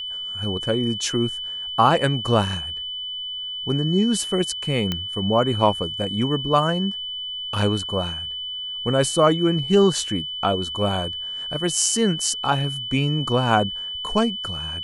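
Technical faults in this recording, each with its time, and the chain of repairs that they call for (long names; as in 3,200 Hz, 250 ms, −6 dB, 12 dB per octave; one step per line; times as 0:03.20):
whistle 3,000 Hz −28 dBFS
0:04.92: click −10 dBFS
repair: click removal
notch filter 3,000 Hz, Q 30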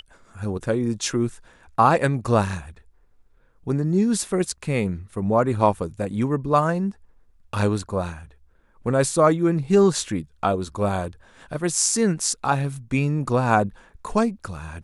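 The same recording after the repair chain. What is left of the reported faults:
none of them is left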